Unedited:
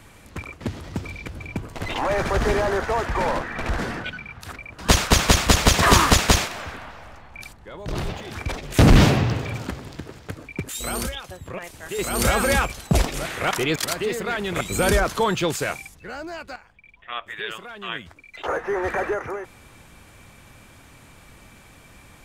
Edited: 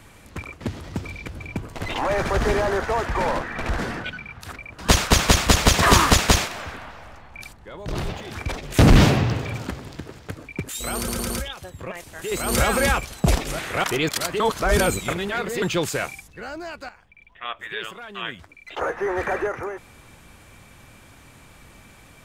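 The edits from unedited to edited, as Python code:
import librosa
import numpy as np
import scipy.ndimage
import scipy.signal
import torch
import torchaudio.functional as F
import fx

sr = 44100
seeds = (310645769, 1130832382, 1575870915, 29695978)

y = fx.edit(x, sr, fx.stutter(start_s=10.97, slice_s=0.11, count=4),
    fx.reverse_span(start_s=14.07, length_s=1.22), tone=tone)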